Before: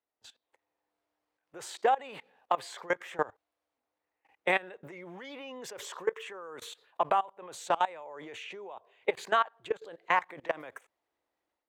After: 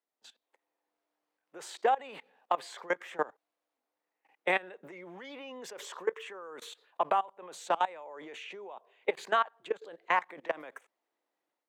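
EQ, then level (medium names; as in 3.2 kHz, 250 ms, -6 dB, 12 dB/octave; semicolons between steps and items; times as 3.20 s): high-pass 180 Hz 24 dB/octave; treble shelf 7.4 kHz -3.5 dB; -1.0 dB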